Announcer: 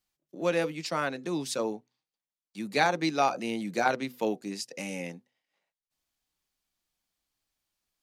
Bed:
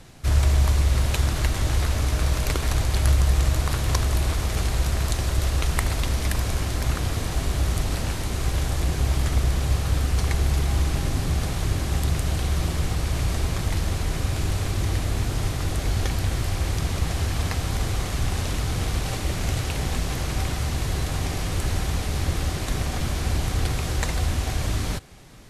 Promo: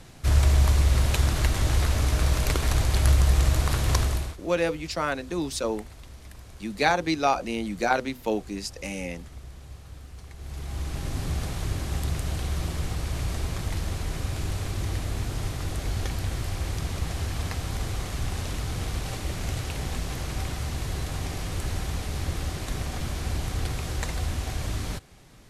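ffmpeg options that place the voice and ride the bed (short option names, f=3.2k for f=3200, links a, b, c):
-filter_complex "[0:a]adelay=4050,volume=2.5dB[a];[1:a]volume=15.5dB,afade=t=out:st=4:d=0.37:silence=0.0944061,afade=t=in:st=10.36:d=0.89:silence=0.158489[b];[a][b]amix=inputs=2:normalize=0"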